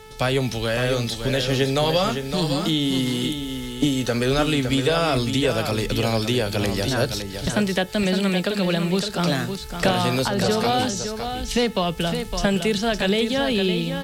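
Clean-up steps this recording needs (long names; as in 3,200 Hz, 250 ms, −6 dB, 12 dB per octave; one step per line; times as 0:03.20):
hum removal 435.5 Hz, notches 8
echo removal 561 ms −7.5 dB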